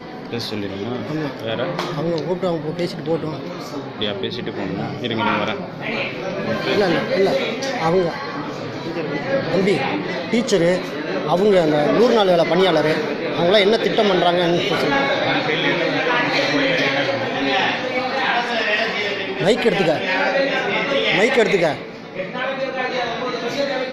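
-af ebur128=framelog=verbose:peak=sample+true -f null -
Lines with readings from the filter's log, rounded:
Integrated loudness:
  I:         -19.3 LUFS
  Threshold: -29.3 LUFS
Loudness range:
  LRA:         7.4 LU
  Threshold: -39.0 LUFS
  LRA low:   -23.8 LUFS
  LRA high:  -16.4 LUFS
Sample peak:
  Peak:       -2.4 dBFS
True peak:
  Peak:       -2.3 dBFS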